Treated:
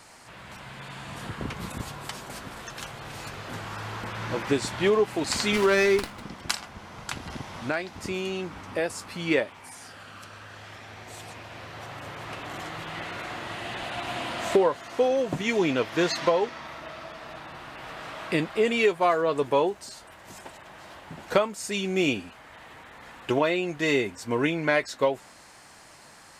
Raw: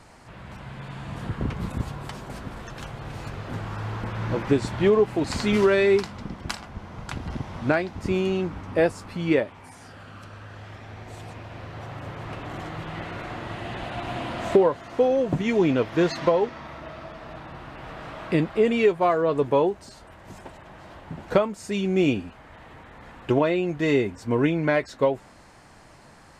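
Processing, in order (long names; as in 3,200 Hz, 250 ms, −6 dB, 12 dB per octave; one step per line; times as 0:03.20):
0:07.55–0:08.90: downward compressor 2 to 1, threshold −26 dBFS, peak gain reduction 6 dB
spectral tilt +2.5 dB per octave
0:05.56–0:06.23: windowed peak hold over 5 samples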